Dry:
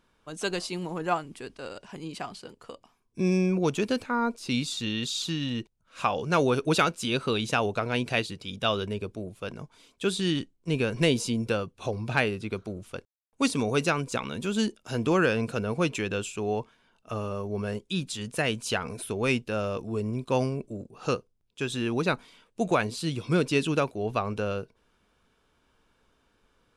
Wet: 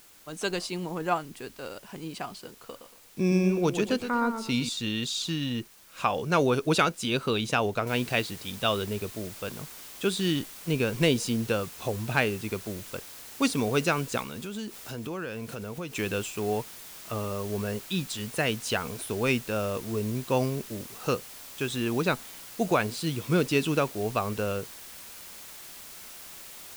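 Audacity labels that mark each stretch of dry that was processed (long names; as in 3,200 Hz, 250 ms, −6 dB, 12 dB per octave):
2.610000	4.690000	feedback echo with a swinging delay time 118 ms, feedback 31%, depth 84 cents, level −9 dB
7.870000	7.870000	noise floor change −55 dB −45 dB
14.220000	15.960000	downward compressor 3 to 1, threshold −35 dBFS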